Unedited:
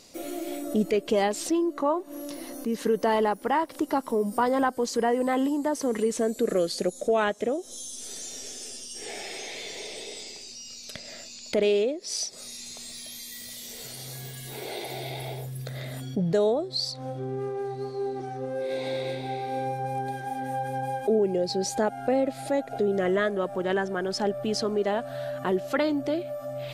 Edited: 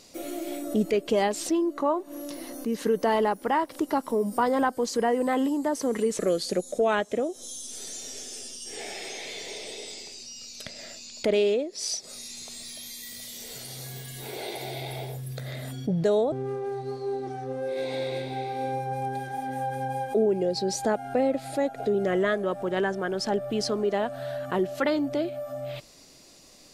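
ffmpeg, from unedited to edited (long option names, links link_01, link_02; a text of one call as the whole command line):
ffmpeg -i in.wav -filter_complex "[0:a]asplit=3[link_01][link_02][link_03];[link_01]atrim=end=6.192[link_04];[link_02]atrim=start=6.478:end=16.612[link_05];[link_03]atrim=start=17.248[link_06];[link_04][link_05]acrossfade=duration=0.004:curve1=hsin:curve2=hsin[link_07];[link_07][link_06]acrossfade=duration=0.004:curve1=hsin:curve2=hsin" out.wav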